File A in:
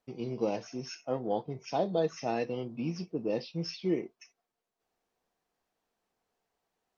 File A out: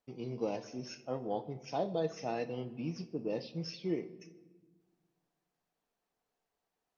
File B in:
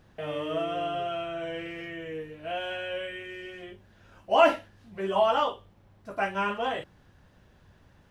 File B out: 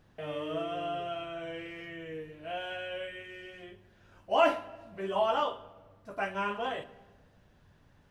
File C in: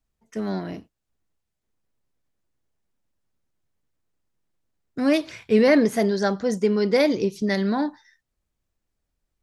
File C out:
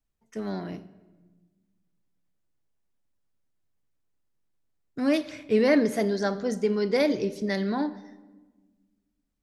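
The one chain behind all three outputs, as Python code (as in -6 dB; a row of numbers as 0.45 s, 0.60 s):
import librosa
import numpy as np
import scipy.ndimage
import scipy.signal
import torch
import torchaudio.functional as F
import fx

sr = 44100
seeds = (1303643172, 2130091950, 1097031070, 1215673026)

y = fx.room_shoebox(x, sr, seeds[0], volume_m3=940.0, walls='mixed', distance_m=0.35)
y = y * 10.0 ** (-4.5 / 20.0)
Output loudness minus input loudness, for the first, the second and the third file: -4.5 LU, -4.5 LU, -4.0 LU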